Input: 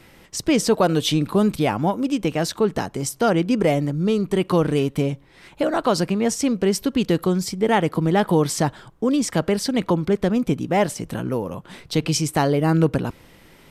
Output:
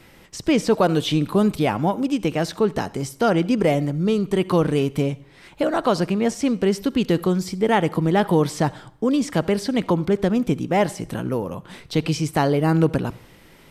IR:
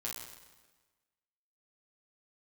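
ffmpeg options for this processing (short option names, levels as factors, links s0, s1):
-filter_complex "[0:a]acrossover=split=3700[s0][s1];[s1]acompressor=threshold=0.0224:ratio=4:attack=1:release=60[s2];[s0][s2]amix=inputs=2:normalize=0,asplit=2[s3][s4];[1:a]atrim=start_sample=2205,asetrate=88200,aresample=44100,adelay=65[s5];[s4][s5]afir=irnorm=-1:irlink=0,volume=0.178[s6];[s3][s6]amix=inputs=2:normalize=0"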